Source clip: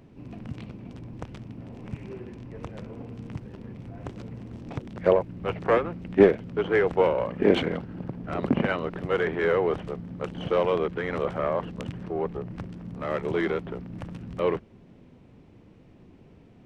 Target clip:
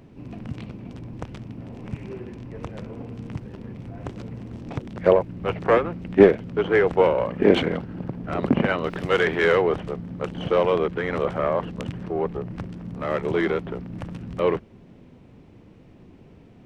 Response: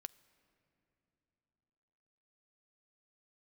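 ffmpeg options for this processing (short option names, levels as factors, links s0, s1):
-filter_complex "[0:a]asettb=1/sr,asplit=3[s0][s1][s2];[s0]atrim=end=8.844[s3];[s1]atrim=start=8.84:end=9.62,asetpts=PTS-STARTPTS,afade=t=in:d=0.004:c=qsin,afade=t=out:st=0.776:d=0.004:c=qsin,highshelf=f=2400:g=11.5[s4];[s2]atrim=start=9.616[s5];[s3][s4]acrossfade=d=0.004:c1=hsin:c2=qsin[s6];[s6][s5]acrossfade=d=0.004:c1=qsin:c2=hsin,volume=1.5"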